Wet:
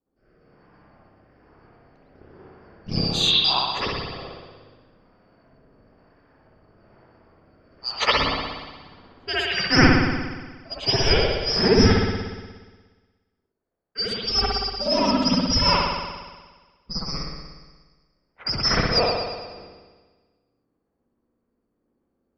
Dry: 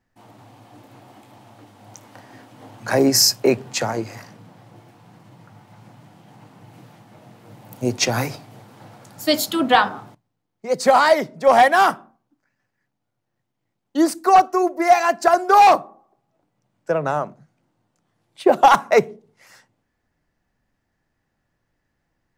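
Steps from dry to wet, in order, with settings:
band-splitting scrambler in four parts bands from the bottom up 2341
low-pass filter 3,400 Hz 12 dB per octave
low-pass that shuts in the quiet parts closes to 1,100 Hz, open at −21.5 dBFS
rotating-speaker cabinet horn 1.1 Hz, later 7 Hz, at 0:10.36
spring reverb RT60 1.4 s, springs 59 ms, chirp 65 ms, DRR −10 dB
level −1 dB

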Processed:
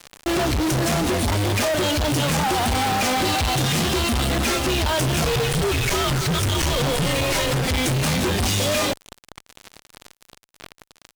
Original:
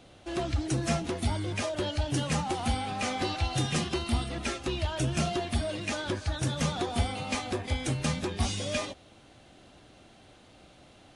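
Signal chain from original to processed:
0:05.24–0:07.66: frequency shifter −230 Hz
fuzz pedal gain 54 dB, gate −47 dBFS
level −6.5 dB

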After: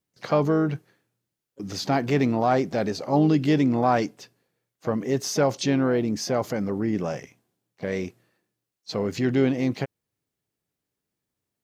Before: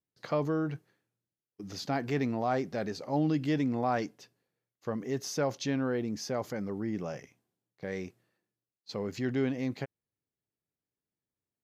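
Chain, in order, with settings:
dynamic equaliser 1,700 Hz, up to −3 dB, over −51 dBFS, Q 3.6
pitch-shifted copies added +5 semitones −16 dB
level +8.5 dB

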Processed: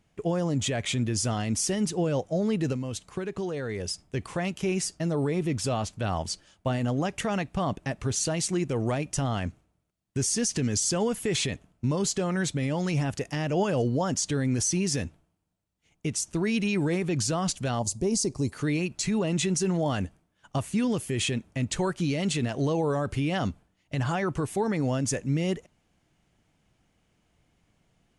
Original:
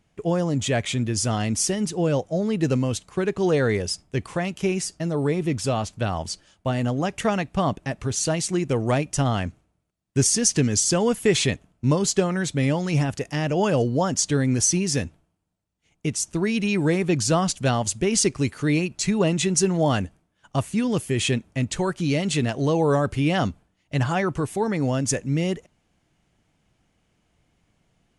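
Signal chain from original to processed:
0:17.79–0:18.53: flat-topped bell 2,100 Hz −14.5 dB
brickwall limiter −16.5 dBFS, peak gain reduction 9.5 dB
0:02.72–0:04.08: downward compressor, threshold −27 dBFS, peak gain reduction 7 dB
level −1.5 dB

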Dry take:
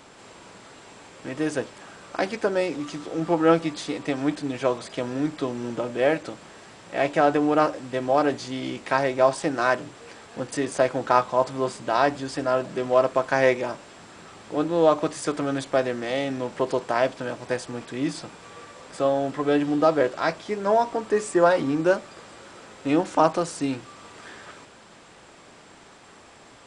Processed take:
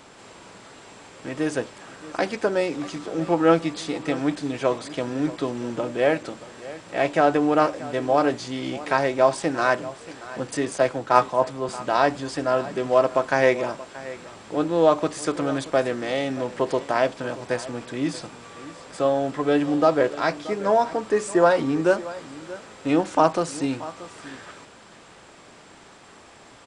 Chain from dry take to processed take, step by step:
on a send: single-tap delay 630 ms −17 dB
0:10.76–0:11.69: on the sum: multiband upward and downward expander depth 70%
level +1 dB

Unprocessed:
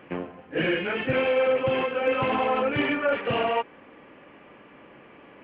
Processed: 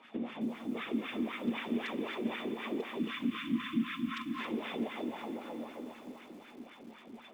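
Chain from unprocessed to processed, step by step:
compressing power law on the bin magnitudes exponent 0.51
dense smooth reverb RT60 2 s, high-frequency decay 0.45×, pre-delay 115 ms, DRR 2 dB
random phases in short frames
wrong playback speed 45 rpm record played at 33 rpm
high shelf with overshoot 2,200 Hz +10.5 dB, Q 3
mains-hum notches 50/100/150/200 Hz
auto-filter band-pass sine 3.9 Hz 280–1,600 Hz
echo machine with several playback heads 207 ms, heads first and second, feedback 55%, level −23 dB
time-frequency box erased 0:02.99–0:04.39, 340–1,000 Hz
downward compressor 3 to 1, threshold −42 dBFS, peak gain reduction 16 dB
hollow resonant body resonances 230/3,500 Hz, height 18 dB, ringing for 90 ms
feedback echo at a low word length 272 ms, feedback 35%, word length 9 bits, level −10 dB

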